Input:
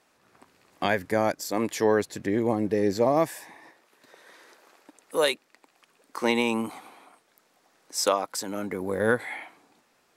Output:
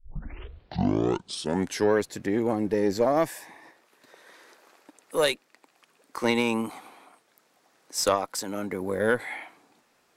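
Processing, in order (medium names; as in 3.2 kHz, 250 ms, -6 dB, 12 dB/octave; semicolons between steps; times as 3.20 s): tape start-up on the opening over 1.93 s; Chebyshev shaper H 2 -12 dB, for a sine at -7 dBFS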